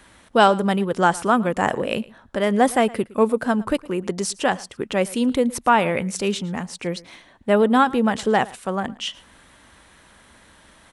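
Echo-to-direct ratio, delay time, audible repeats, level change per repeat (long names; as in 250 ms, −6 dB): −21.5 dB, 112 ms, 1, repeats not evenly spaced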